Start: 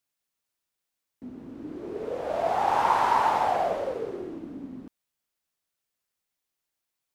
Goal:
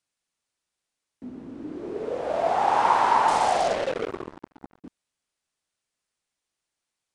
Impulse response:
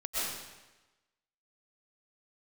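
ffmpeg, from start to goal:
-filter_complex "[0:a]acrossover=split=150|1300[a][b][c];[a]alimiter=level_in=27dB:limit=-24dB:level=0:latency=1:release=52,volume=-27dB[d];[d][b][c]amix=inputs=3:normalize=0,asettb=1/sr,asplit=3[e][f][g];[e]atrim=end=3.284[h];[f]atrim=start=3.28:end=4.84,asetpts=PTS-STARTPTS,afade=t=in:d=0.004:c=qsin,afade=t=out:st=1.556:d=0.004:c=qsin,acrusher=bits=4:mix=0:aa=0.5[i];[g]atrim=start=4.836[j];[h][i]acrossfade=d=0.004:c1=hsin:c2=qsin[k];[k][j]acrossfade=d=0.004:c1=qsin:c2=hsin,aresample=22050,aresample=44100,volume=2.5dB"

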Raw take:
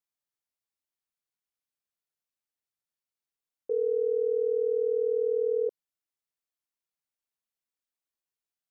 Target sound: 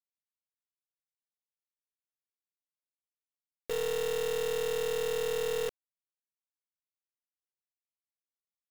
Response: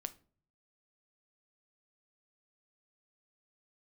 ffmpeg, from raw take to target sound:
-af "lowshelf=f=430:g=-2.5,alimiter=level_in=3dB:limit=-24dB:level=0:latency=1:release=26,volume=-3dB,aeval=exprs='0.0447*(cos(1*acos(clip(val(0)/0.0447,-1,1)))-cos(1*PI/2))+0.00562*(cos(2*acos(clip(val(0)/0.0447,-1,1)))-cos(2*PI/2))+0.00224*(cos(6*acos(clip(val(0)/0.0447,-1,1)))-cos(6*PI/2))':c=same,acrusher=bits=5:mix=0:aa=0.000001"

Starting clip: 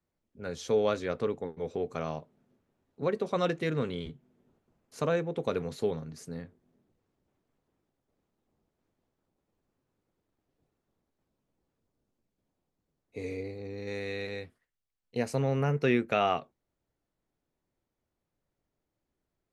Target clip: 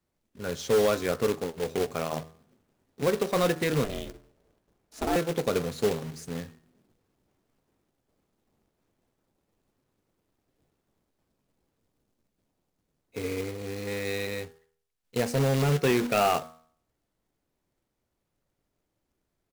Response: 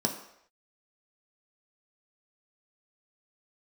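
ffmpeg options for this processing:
-filter_complex "[0:a]bandreject=f=80.22:t=h:w=4,bandreject=f=160.44:t=h:w=4,bandreject=f=240.66:t=h:w=4,bandreject=f=320.88:t=h:w=4,bandreject=f=401.1:t=h:w=4,bandreject=f=481.32:t=h:w=4,bandreject=f=561.54:t=h:w=4,bandreject=f=641.76:t=h:w=4,bandreject=f=721.98:t=h:w=4,bandreject=f=802.2:t=h:w=4,bandreject=f=882.42:t=h:w=4,bandreject=f=962.64:t=h:w=4,bandreject=f=1.04286k:t=h:w=4,bandreject=f=1.12308k:t=h:w=4,bandreject=f=1.2033k:t=h:w=4,bandreject=f=1.28352k:t=h:w=4,bandreject=f=1.36374k:t=h:w=4,bandreject=f=1.44396k:t=h:w=4,bandreject=f=1.52418k:t=h:w=4,bandreject=f=1.6044k:t=h:w=4,bandreject=f=1.68462k:t=h:w=4,bandreject=f=1.76484k:t=h:w=4,bandreject=f=1.84506k:t=h:w=4,aresample=32000,aresample=44100,asplit=2[a][b];[b]aeval=exprs='0.0708*(abs(mod(val(0)/0.0708+3,4)-2)-1)':c=same,volume=-4dB[c];[a][c]amix=inputs=2:normalize=0,acrusher=bits=2:mode=log:mix=0:aa=0.000001,asettb=1/sr,asplit=3[d][e][f];[d]atrim=end=3.844[g];[e]atrim=start=3.84:end=5.16,asetpts=PTS-STARTPTS,afade=t=in:d=0.004:c=qsin,afade=t=out:st=1.316:d=0.004:c=qsin,aeval=exprs='val(0)*sin(2*PI*200*n/s)':c=same[h];[f]atrim=start=5.156[i];[g][h]acrossfade=d=0.004:c1=hsin:c2=qsin[j];[j][i]acrossfade=d=0.004:c1=qsin:c2=hsin"

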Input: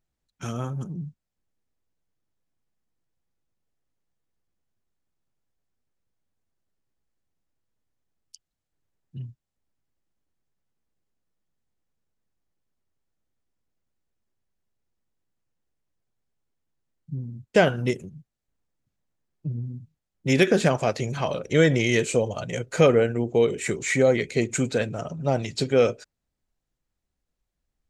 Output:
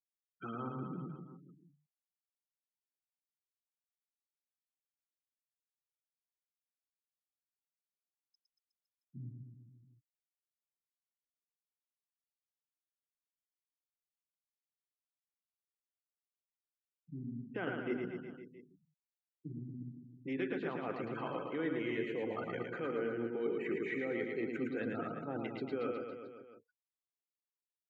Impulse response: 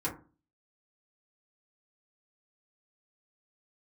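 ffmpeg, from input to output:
-filter_complex "[0:a]bandreject=f=50:t=h:w=6,bandreject=f=100:t=h:w=6,bandreject=f=150:t=h:w=6,bandreject=f=200:t=h:w=6,bandreject=f=250:t=h:w=6,bandreject=f=300:t=h:w=6,afftfilt=real='re*gte(hypot(re,im),0.0224)':imag='im*gte(hypot(re,im),0.0224)':win_size=1024:overlap=0.75,dynaudnorm=f=420:g=31:m=16dB,alimiter=limit=-12dB:level=0:latency=1:release=496,areverse,acompressor=threshold=-29dB:ratio=10,areverse,highpass=230,equalizer=f=300:t=q:w=4:g=9,equalizer=f=610:t=q:w=4:g=-10,equalizer=f=1.3k:t=q:w=4:g=5,equalizer=f=2.4k:t=q:w=4:g=-3,lowpass=f=2.8k:w=0.5412,lowpass=f=2.8k:w=1.3066,asplit=2[a][b];[b]aecho=0:1:110|231|364.1|510.5|671.6:0.631|0.398|0.251|0.158|0.1[c];[a][c]amix=inputs=2:normalize=0,volume=-5dB"

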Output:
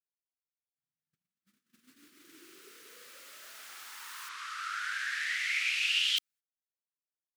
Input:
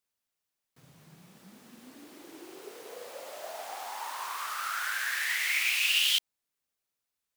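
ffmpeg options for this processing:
-filter_complex "[0:a]firequalizer=gain_entry='entry(300,0);entry(730,-20);entry(1300,6)':delay=0.05:min_phase=1,agate=range=-38dB:threshold=-48dB:ratio=16:detection=peak,asplit=3[a][b][c];[a]afade=t=out:st=4.28:d=0.02[d];[b]highpass=210,lowpass=6.1k,afade=t=in:st=4.28:d=0.02,afade=t=out:st=6.16:d=0.02[e];[c]afade=t=in:st=6.16:d=0.02[f];[d][e][f]amix=inputs=3:normalize=0,volume=-8.5dB"

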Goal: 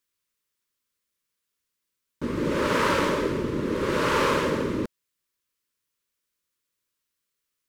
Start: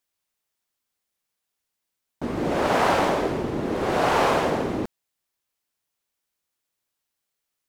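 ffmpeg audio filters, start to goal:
-af "asuperstop=centerf=740:order=4:qfactor=2"

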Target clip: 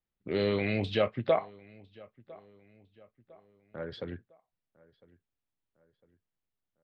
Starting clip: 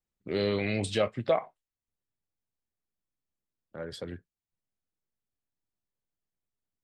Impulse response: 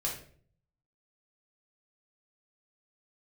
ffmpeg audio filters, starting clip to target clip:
-filter_complex "[0:a]lowpass=f=4k:w=0.5412,lowpass=f=4k:w=1.3066,asplit=2[a][b];[b]adelay=1004,lowpass=f=2.8k:p=1,volume=-23dB,asplit=2[c][d];[d]adelay=1004,lowpass=f=2.8k:p=1,volume=0.46,asplit=2[e][f];[f]adelay=1004,lowpass=f=2.8k:p=1,volume=0.46[g];[c][e][g]amix=inputs=3:normalize=0[h];[a][h]amix=inputs=2:normalize=0"

